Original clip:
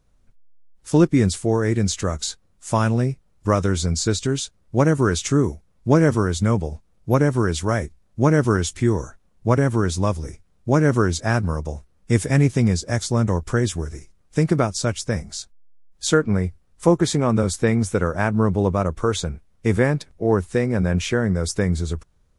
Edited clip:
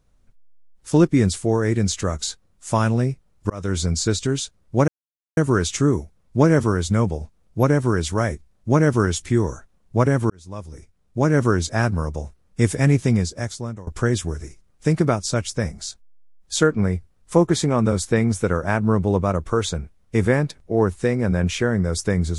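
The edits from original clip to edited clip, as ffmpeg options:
-filter_complex "[0:a]asplit=5[a][b][c][d][e];[a]atrim=end=3.5,asetpts=PTS-STARTPTS,afade=t=out:st=3.496:d=0.004:c=hsin[f];[b]atrim=start=3.5:end=4.88,asetpts=PTS-STARTPTS,afade=t=in:d=0.28,afade=t=out:st=1.376:d=0.004:c=hsin,apad=pad_dur=0.49[g];[c]atrim=start=4.88:end=9.81,asetpts=PTS-STARTPTS,afade=t=in:d=0.004:c=hsin,afade=t=out:st=4.926:d=0.004:c=hsin[h];[d]atrim=start=9.81:end=13.38,asetpts=PTS-STARTPTS,afade=t=in:d=1.11,afade=t=out:st=2.79:d=0.78:silence=0.0707946[i];[e]atrim=start=13.38,asetpts=PTS-STARTPTS,afade=t=in:d=0.004:c=hsin:silence=0.0707946[j];[f][g][h][i][j]concat=n=5:v=0:a=1"

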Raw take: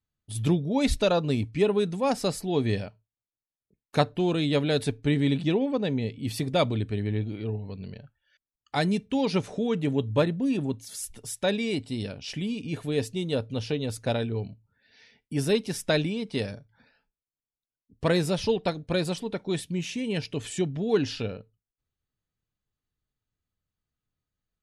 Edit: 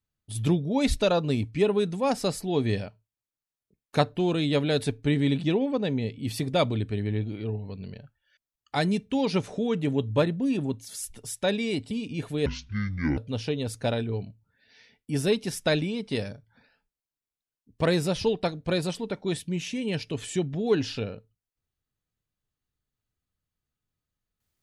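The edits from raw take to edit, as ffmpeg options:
-filter_complex "[0:a]asplit=4[a][b][c][d];[a]atrim=end=11.912[e];[b]atrim=start=12.448:end=13.004[f];[c]atrim=start=13:end=13.4,asetpts=PTS-STARTPTS,asetrate=24696,aresample=44100[g];[d]atrim=start=13.396[h];[e][f]acrossfade=d=0.004:c1=hsin:c2=hsin[i];[i][g]acrossfade=d=0.004:c1=hsin:c2=hsin[j];[j][h]acrossfade=d=0.004:c1=hsin:c2=hsin"

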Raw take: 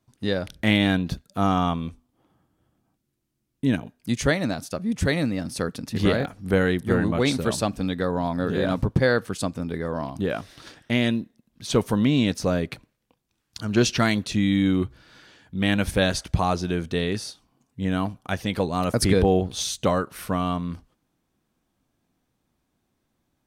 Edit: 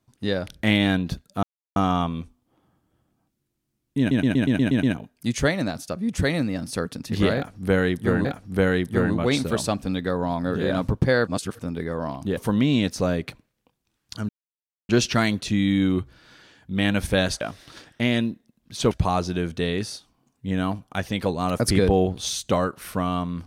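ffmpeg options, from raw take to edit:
-filter_complex "[0:a]asplit=16[a][b][c][d][e][f][g][h][i][j][k][l][m][n][o][p];[a]atrim=end=1.43,asetpts=PTS-STARTPTS,afade=t=out:st=1.426:d=0.004:c=hsin,apad=pad_dur=0.33[q];[b]atrim=start=1.43:end=3.782,asetpts=PTS-STARTPTS,afade=t=in:d=0.004:c=hsin[r];[c]atrim=start=3.658:end=3.782[s];[d]atrim=start=3.658:end=3.782[t];[e]atrim=start=3.658:end=3.782[u];[f]atrim=start=3.658:end=3.782[v];[g]atrim=start=3.658:end=3.782[w];[h]atrim=start=3.658:end=3.782[x];[i]atrim=start=3.658:end=7.082[y];[j]atrim=start=6.188:end=9.212[z];[k]atrim=start=9.208:end=9.532,asetpts=PTS-STARTPTS,areverse[aa];[l]atrim=start=9.528:end=10.312[ab];[m]atrim=start=11.808:end=13.73,asetpts=PTS-STARTPTS,afade=t=out:st=1.918:d=0.004:c=hsin,apad=pad_dur=0.6[ac];[n]atrim=start=13.73:end=16.252,asetpts=PTS-STARTPTS,afade=t=in:d=0.004:c=hsin[ad];[o]atrim=start=10.308:end=11.812[ae];[p]atrim=start=16.248[af];[q][r]concat=n=2:v=0:a=1[ag];[ag][s]acrossfade=d=0.004:c1=hsin:c2=hsin[ah];[ah][t]acrossfade=d=0.004:c1=hsin:c2=hsin[ai];[ai][u]acrossfade=d=0.004:c1=hsin:c2=hsin[aj];[aj][v]acrossfade=d=0.004:c1=hsin:c2=hsin[ak];[ak][w]acrossfade=d=0.004:c1=hsin:c2=hsin[al];[al][x]acrossfade=d=0.004:c1=hsin:c2=hsin[am];[am][y]acrossfade=d=0.004:c1=hsin:c2=hsin[an];[an][z]acrossfade=d=0.004:c1=hsin:c2=hsin[ao];[ao][aa]acrossfade=d=0.004:c1=hsin:c2=hsin[ap];[ap][ab]acrossfade=d=0.004:c1=hsin:c2=hsin[aq];[ac][ad]concat=n=2:v=0:a=1[ar];[aq][ar]acrossfade=d=0.004:c1=hsin:c2=hsin[as];[as][ae]acrossfade=d=0.004:c1=hsin:c2=hsin[at];[at][af]acrossfade=d=0.004:c1=hsin:c2=hsin"

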